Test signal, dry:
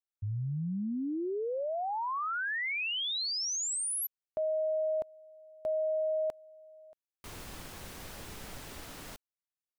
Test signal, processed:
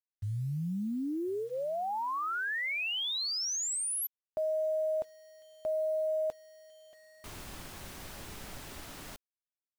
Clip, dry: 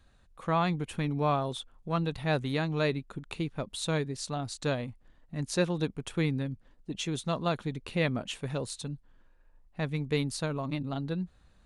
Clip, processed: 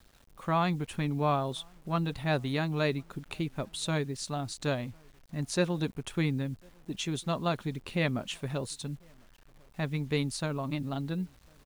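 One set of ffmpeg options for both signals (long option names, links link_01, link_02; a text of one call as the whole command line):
ffmpeg -i in.wav -filter_complex "[0:a]bandreject=frequency=480:width=12,asplit=2[link_01][link_02];[link_02]adelay=1050,volume=-30dB,highshelf=frequency=4000:gain=-23.6[link_03];[link_01][link_03]amix=inputs=2:normalize=0,acrusher=bits=9:mix=0:aa=0.000001" out.wav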